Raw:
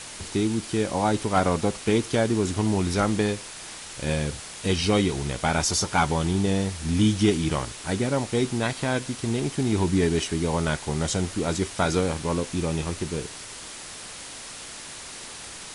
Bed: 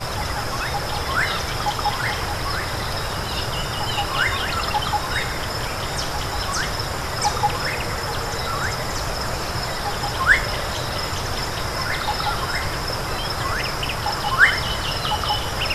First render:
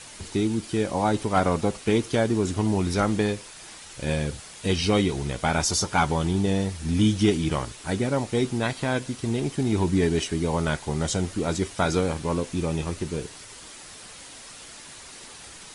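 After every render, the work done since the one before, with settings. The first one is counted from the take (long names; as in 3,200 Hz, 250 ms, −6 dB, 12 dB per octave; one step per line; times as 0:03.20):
broadband denoise 6 dB, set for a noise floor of −40 dBFS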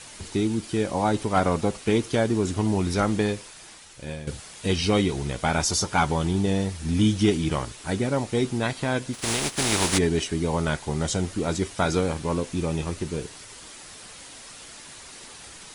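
0:03.39–0:04.27: fade out linear, to −12 dB
0:09.13–0:09.97: compressing power law on the bin magnitudes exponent 0.39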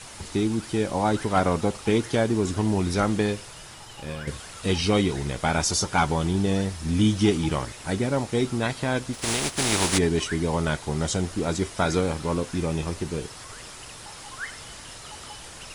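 mix in bed −21.5 dB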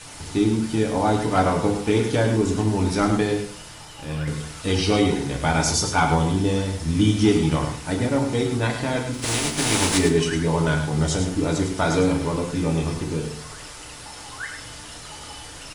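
single-tap delay 104 ms −7.5 dB
feedback delay network reverb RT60 0.46 s, low-frequency decay 1.55×, high-frequency decay 0.85×, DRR 3 dB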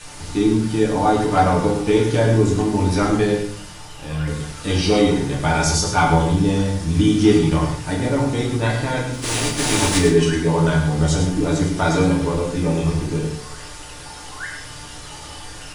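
rectangular room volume 32 cubic metres, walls mixed, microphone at 0.44 metres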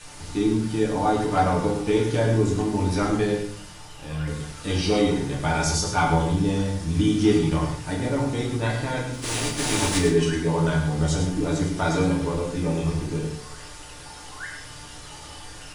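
level −5 dB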